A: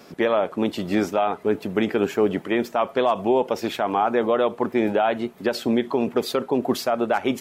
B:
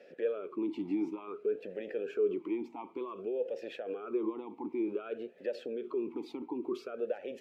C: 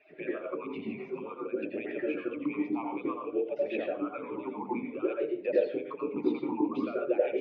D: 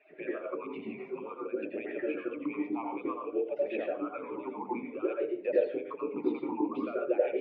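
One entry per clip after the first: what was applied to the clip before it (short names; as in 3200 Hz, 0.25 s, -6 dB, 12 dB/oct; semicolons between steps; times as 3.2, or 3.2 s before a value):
dynamic EQ 1800 Hz, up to -6 dB, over -39 dBFS, Q 1; limiter -20 dBFS, peak gain reduction 10 dB; vowel sweep e-u 0.55 Hz; gain +2 dB
median-filter separation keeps percussive; Bessel low-pass 2400 Hz, order 4; reverb RT60 0.40 s, pre-delay 79 ms, DRR 0 dB; gain +1.5 dB
tone controls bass -7 dB, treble -14 dB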